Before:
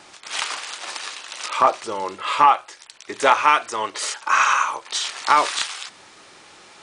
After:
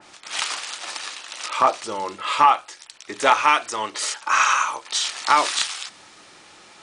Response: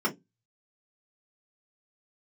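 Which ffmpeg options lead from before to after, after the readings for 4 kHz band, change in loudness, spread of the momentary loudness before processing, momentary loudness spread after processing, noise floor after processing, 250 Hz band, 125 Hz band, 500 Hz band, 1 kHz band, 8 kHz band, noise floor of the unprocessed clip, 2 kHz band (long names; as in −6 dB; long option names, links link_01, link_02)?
+1.0 dB, −0.5 dB, 14 LU, 15 LU, −49 dBFS, 0.0 dB, can't be measured, −2.0 dB, −1.0 dB, +2.0 dB, −48 dBFS, −0.5 dB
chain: -filter_complex "[0:a]asplit=2[link_01][link_02];[1:a]atrim=start_sample=2205[link_03];[link_02][link_03]afir=irnorm=-1:irlink=0,volume=-25dB[link_04];[link_01][link_04]amix=inputs=2:normalize=0,adynamicequalizer=threshold=0.0398:dfrequency=2800:dqfactor=0.7:tfrequency=2800:tqfactor=0.7:attack=5:release=100:ratio=0.375:range=2:mode=boostabove:tftype=highshelf,volume=-1dB"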